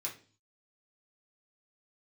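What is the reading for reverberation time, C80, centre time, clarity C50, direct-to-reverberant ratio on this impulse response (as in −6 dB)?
0.40 s, 16.5 dB, 19 ms, 10.5 dB, −3.0 dB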